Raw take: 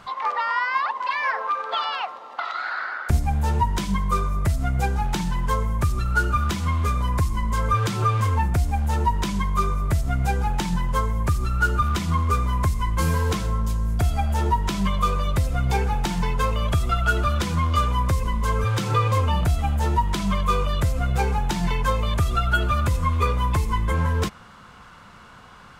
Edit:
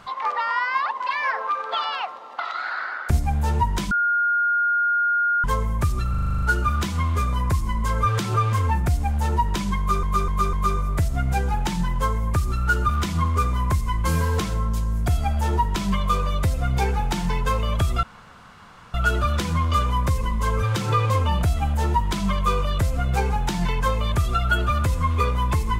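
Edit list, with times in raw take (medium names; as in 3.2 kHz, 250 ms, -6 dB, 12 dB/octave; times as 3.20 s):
3.91–5.44 s: bleep 1.42 kHz -17.5 dBFS
6.10 s: stutter 0.04 s, 9 plays
9.46–9.71 s: loop, 4 plays
16.96 s: insert room tone 0.91 s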